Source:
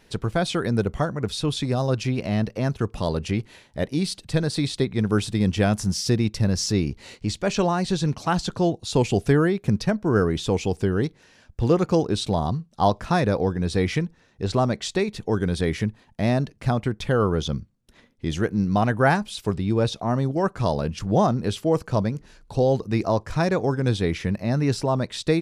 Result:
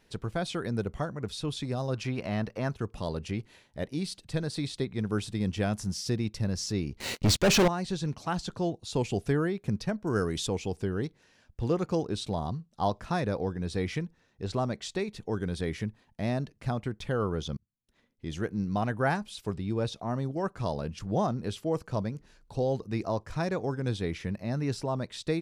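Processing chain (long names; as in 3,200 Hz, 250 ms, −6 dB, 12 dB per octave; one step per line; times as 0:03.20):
0:01.95–0:02.75: parametric band 1,200 Hz +7 dB 2 octaves
0:07.00–0:07.68: leveller curve on the samples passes 5
0:10.07–0:10.47: parametric band 9,500 Hz +12 dB 2.4 octaves
0:17.57–0:18.43: fade in
level −8.5 dB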